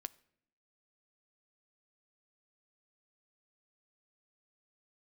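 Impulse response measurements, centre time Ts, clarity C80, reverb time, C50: 2 ms, 25.0 dB, 0.65 s, 22.5 dB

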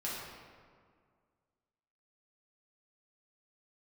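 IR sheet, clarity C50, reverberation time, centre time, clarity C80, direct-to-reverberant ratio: -1.0 dB, 2.0 s, 0.105 s, 1.0 dB, -8.0 dB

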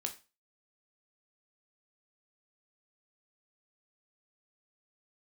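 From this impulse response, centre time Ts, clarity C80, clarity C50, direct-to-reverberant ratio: 10 ms, 19.5 dB, 13.5 dB, 4.5 dB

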